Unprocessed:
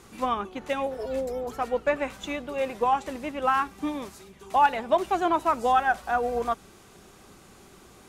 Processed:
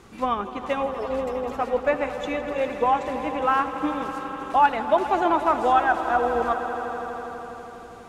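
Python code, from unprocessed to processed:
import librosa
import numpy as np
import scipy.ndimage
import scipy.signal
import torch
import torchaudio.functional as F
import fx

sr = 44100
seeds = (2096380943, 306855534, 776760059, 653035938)

y = fx.lowpass(x, sr, hz=3500.0, slope=6)
y = fx.echo_swell(y, sr, ms=82, loudest=5, wet_db=-15.0)
y = y * librosa.db_to_amplitude(2.5)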